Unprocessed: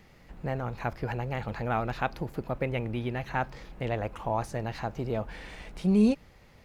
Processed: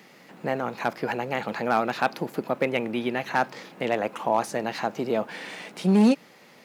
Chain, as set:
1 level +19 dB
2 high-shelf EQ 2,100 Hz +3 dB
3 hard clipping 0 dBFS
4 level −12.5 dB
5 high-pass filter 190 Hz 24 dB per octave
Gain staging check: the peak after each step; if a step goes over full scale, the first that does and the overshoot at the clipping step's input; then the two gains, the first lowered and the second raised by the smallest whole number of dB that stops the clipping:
+6.0, +7.0, 0.0, −12.5, −9.0 dBFS
step 1, 7.0 dB
step 1 +12 dB, step 4 −5.5 dB

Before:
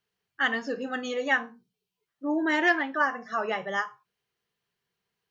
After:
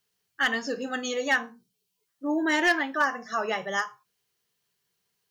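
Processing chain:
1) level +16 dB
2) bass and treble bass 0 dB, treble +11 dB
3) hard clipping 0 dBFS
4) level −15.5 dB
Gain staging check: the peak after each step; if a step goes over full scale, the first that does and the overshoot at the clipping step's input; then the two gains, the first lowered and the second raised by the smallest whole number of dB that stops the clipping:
+4.5, +5.0, 0.0, −15.5 dBFS
step 1, 5.0 dB
step 1 +11 dB, step 4 −10.5 dB

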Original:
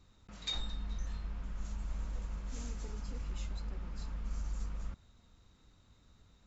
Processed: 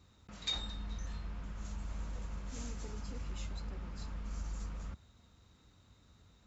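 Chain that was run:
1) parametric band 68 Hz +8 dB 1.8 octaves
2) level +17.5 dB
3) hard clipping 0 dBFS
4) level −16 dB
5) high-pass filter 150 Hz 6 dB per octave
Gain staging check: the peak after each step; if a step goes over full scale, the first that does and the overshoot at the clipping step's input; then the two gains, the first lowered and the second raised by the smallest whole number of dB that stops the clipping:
−23.0, −5.5, −5.5, −21.5, −24.0 dBFS
no step passes full scale

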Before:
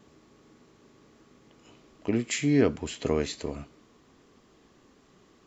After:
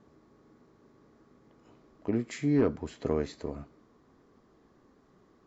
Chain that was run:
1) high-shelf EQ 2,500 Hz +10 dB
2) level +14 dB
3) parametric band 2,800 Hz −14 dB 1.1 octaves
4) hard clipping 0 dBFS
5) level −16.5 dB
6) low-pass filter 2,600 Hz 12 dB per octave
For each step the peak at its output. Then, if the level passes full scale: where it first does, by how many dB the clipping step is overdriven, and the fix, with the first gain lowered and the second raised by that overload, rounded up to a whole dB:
−8.5, +5.5, +4.5, 0.0, −16.5, −16.5 dBFS
step 2, 4.5 dB
step 2 +9 dB, step 5 −11.5 dB

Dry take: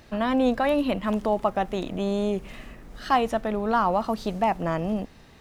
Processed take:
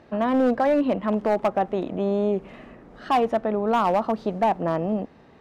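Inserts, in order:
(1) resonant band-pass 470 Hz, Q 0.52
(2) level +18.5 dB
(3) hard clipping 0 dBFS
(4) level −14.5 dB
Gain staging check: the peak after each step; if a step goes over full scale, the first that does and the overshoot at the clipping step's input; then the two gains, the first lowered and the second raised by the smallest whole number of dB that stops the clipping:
−10.5, +8.0, 0.0, −14.5 dBFS
step 2, 8.0 dB
step 2 +10.5 dB, step 4 −6.5 dB

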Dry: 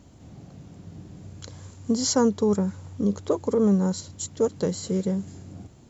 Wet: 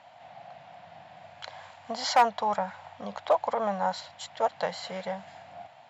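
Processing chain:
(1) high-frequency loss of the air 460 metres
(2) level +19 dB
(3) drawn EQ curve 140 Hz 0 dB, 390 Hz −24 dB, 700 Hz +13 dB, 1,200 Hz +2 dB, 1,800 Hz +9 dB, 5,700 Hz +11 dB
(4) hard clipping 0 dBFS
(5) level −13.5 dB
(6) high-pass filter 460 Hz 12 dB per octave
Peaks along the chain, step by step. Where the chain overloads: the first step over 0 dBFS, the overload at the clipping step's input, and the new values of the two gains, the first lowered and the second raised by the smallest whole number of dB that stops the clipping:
−11.0, +8.0, +7.0, 0.0, −13.5, −10.0 dBFS
step 2, 7.0 dB
step 2 +12 dB, step 5 −6.5 dB

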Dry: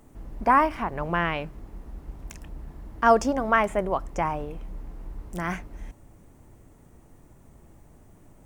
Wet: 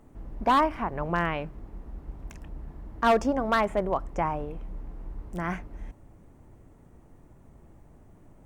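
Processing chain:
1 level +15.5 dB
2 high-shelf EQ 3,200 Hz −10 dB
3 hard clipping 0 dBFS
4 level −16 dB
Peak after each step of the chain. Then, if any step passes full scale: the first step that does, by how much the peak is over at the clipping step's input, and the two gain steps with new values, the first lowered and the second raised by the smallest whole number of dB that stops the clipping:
+9.0, +8.5, 0.0, −16.0 dBFS
step 1, 8.5 dB
step 1 +6.5 dB, step 4 −7 dB

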